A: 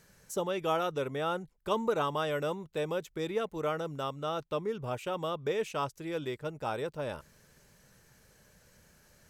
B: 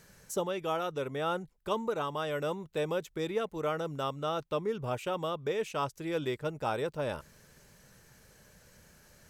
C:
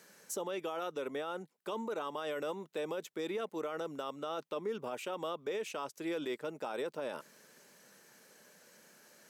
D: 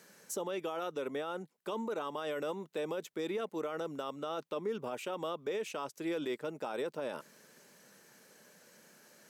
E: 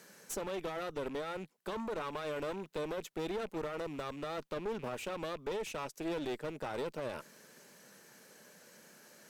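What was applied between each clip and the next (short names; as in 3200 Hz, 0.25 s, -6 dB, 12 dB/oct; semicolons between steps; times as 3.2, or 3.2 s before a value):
vocal rider 0.5 s
HPF 220 Hz 24 dB/oct; limiter -29 dBFS, peak gain reduction 10.5 dB
low shelf 270 Hz +4 dB
rattling part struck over -53 dBFS, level -47 dBFS; one-sided clip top -44 dBFS; gain +2 dB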